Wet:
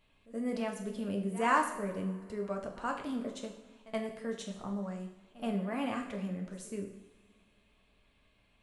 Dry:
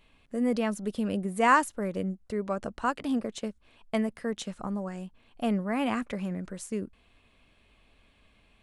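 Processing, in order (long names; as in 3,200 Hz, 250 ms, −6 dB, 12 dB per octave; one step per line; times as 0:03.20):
echo ahead of the sound 75 ms −18.5 dB
coupled-rooms reverb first 0.69 s, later 2.4 s, from −18 dB, DRR 2 dB
level −8 dB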